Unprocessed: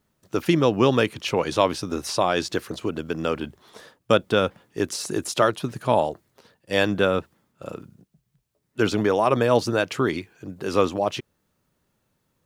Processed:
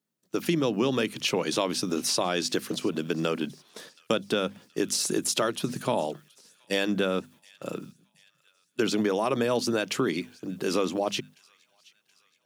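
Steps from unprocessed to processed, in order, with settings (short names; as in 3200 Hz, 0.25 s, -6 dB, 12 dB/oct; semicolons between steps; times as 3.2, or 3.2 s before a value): notches 50/100/150/200/250 Hz; gate -46 dBFS, range -11 dB; HPF 160 Hz 24 dB/oct; bell 900 Hz -8.5 dB 2.9 oct; AGC gain up to 5 dB; in parallel at -0.5 dB: limiter -13 dBFS, peak gain reduction 8 dB; on the sum: compressor 2.5:1, threshold -20 dBFS, peak gain reduction 7 dB; on a send: thin delay 0.725 s, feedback 54%, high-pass 1900 Hz, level -24 dB; on the sum: gain -4 dB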